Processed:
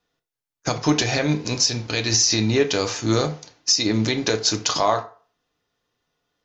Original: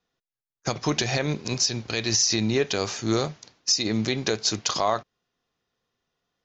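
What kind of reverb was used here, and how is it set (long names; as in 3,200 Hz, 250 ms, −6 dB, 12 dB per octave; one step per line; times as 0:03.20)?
feedback delay network reverb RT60 0.41 s, low-frequency decay 0.7×, high-frequency decay 0.65×, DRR 5 dB
level +3 dB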